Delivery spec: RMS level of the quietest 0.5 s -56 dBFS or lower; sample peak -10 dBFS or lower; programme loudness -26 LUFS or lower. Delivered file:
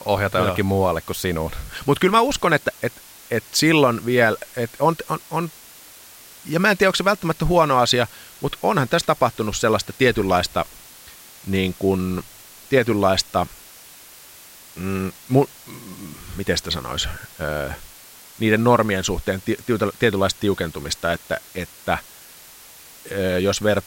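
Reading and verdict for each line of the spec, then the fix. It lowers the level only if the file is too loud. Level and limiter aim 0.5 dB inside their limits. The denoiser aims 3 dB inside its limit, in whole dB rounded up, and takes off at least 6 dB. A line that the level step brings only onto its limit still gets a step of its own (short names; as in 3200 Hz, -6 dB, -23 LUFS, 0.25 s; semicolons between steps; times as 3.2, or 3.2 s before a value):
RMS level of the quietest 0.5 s -44 dBFS: fail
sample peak -4.0 dBFS: fail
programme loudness -21.0 LUFS: fail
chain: denoiser 10 dB, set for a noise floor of -44 dBFS; gain -5.5 dB; limiter -10.5 dBFS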